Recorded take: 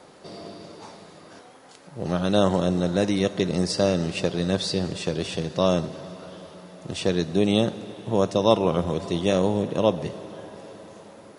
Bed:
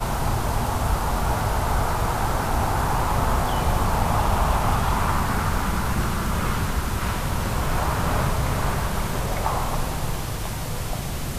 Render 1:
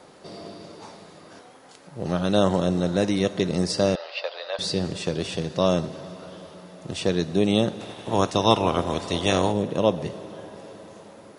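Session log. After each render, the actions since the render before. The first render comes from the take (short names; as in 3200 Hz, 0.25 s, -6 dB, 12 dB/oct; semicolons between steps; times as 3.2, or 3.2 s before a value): 3.95–4.59 Chebyshev band-pass 550–4800 Hz, order 4; 7.79–9.51 spectral limiter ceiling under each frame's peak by 13 dB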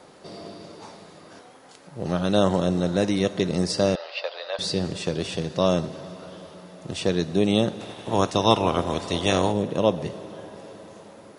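nothing audible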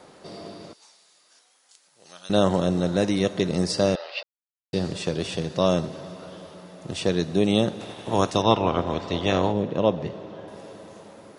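0.73–2.3 band-pass 7800 Hz, Q 0.88; 4.23–4.73 mute; 8.42–10.48 air absorption 140 m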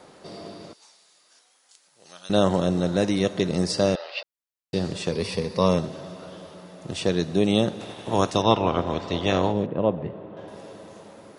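5.12–5.78 ripple EQ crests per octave 0.89, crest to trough 10 dB; 9.66–10.37 air absorption 500 m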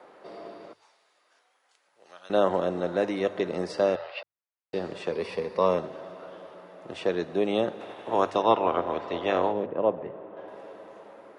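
three-band isolator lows -16 dB, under 320 Hz, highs -17 dB, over 2600 Hz; notches 50/100/150 Hz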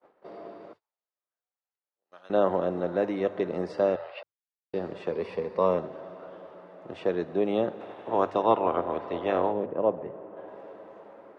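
gate -50 dBFS, range -31 dB; LPF 1500 Hz 6 dB/oct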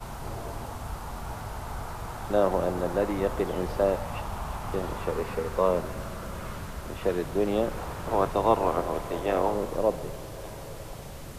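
add bed -13.5 dB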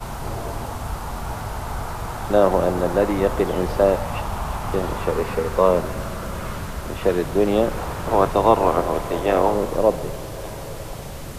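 gain +7.5 dB; limiter -3 dBFS, peak gain reduction 1 dB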